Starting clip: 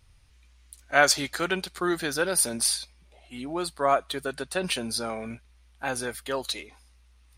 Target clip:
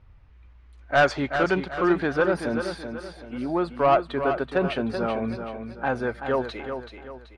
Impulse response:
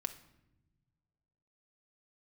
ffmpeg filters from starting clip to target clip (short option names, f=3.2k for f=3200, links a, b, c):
-af "lowpass=1.5k,asoftclip=type=tanh:threshold=-17.5dB,aecho=1:1:381|762|1143|1524:0.398|0.155|0.0606|0.0236,volume=6.5dB"